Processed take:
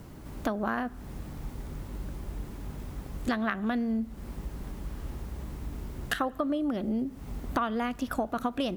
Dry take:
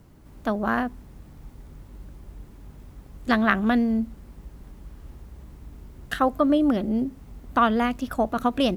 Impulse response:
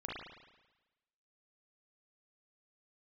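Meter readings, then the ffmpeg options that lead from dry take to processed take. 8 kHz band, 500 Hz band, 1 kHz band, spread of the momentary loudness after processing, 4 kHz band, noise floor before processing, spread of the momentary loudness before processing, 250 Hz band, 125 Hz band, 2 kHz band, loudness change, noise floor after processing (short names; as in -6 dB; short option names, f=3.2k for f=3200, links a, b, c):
n/a, -7.5 dB, -8.0 dB, 12 LU, -6.5 dB, -48 dBFS, 12 LU, -7.0 dB, -1.0 dB, -7.0 dB, -9.5 dB, -45 dBFS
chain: -filter_complex "[0:a]lowshelf=f=140:g=-3.5,acompressor=threshold=-36dB:ratio=6,asplit=2[a][b];[1:a]atrim=start_sample=2205[c];[b][c]afir=irnorm=-1:irlink=0,volume=-22dB[d];[a][d]amix=inputs=2:normalize=0,volume=7.5dB"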